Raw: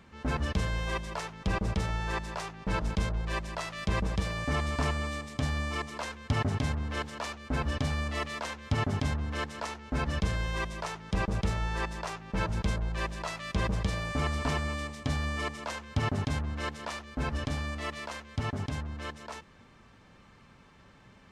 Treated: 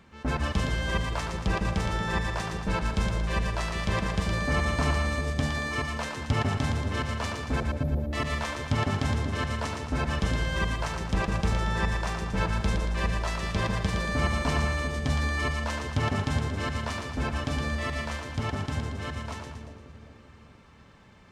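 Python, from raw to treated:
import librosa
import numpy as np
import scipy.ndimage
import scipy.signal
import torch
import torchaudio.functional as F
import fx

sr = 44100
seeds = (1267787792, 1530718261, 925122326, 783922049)

p1 = fx.cheby2_bandstop(x, sr, low_hz=1200.0, high_hz=8300.0, order=4, stop_db=40, at=(7.6, 8.13))
p2 = fx.echo_split(p1, sr, split_hz=590.0, low_ms=392, high_ms=115, feedback_pct=52, wet_db=-4.5)
p3 = np.sign(p2) * np.maximum(np.abs(p2) - 10.0 ** (-46.0 / 20.0), 0.0)
y = p2 + (p3 * 10.0 ** (-10.0 / 20.0))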